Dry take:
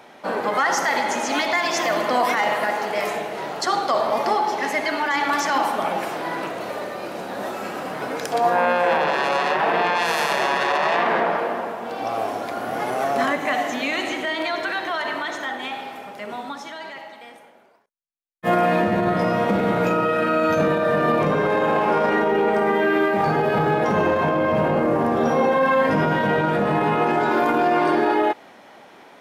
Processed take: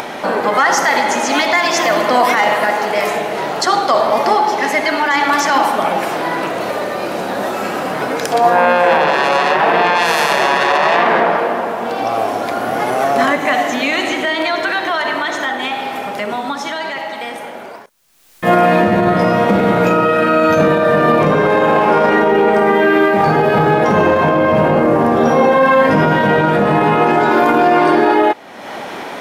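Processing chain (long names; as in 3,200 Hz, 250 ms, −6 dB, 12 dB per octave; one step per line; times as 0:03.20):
upward compression, threshold −22 dBFS
level +7.5 dB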